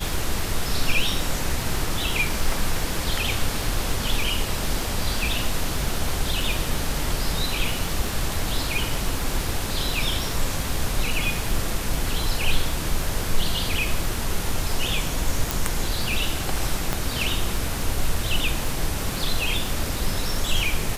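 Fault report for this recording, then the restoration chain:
crackle 55/s -29 dBFS
15.51 pop
16.93 pop -8 dBFS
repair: de-click

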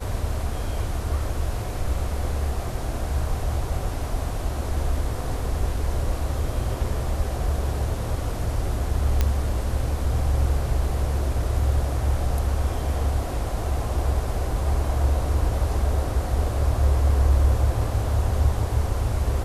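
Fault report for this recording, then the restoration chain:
9.21 pop -8 dBFS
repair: de-click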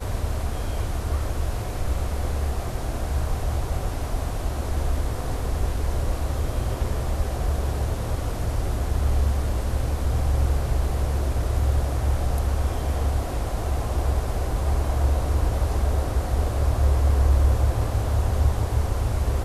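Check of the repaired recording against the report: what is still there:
none

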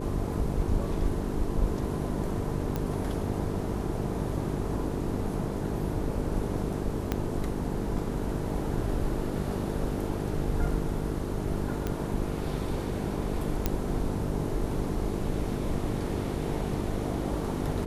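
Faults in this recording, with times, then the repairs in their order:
buzz 50 Hz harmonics 9 -34 dBFS
2.76 pop -17 dBFS
7.12 pop -14 dBFS
11.87 pop -17 dBFS
13.66 pop -11 dBFS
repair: de-click; de-hum 50 Hz, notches 9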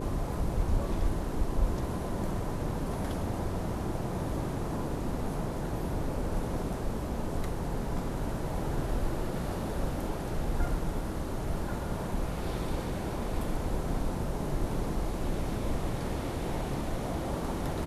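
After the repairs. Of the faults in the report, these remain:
7.12 pop

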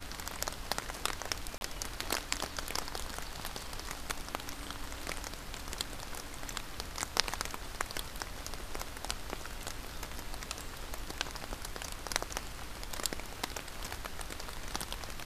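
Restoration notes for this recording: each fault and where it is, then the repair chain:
1.58–1.61 gap 31 ms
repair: interpolate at 1.58, 31 ms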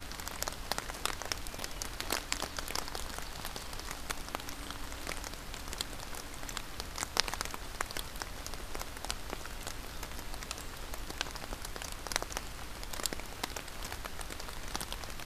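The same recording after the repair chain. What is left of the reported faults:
none

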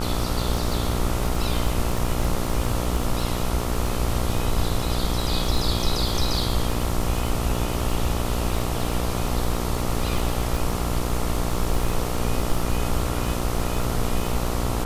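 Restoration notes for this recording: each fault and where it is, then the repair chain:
buzz 60 Hz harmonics 23 -27 dBFS
crackle 33/s -26 dBFS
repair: de-click; de-hum 60 Hz, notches 23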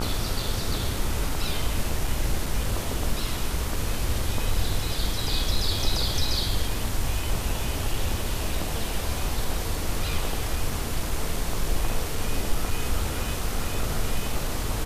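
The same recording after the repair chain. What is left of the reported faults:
none

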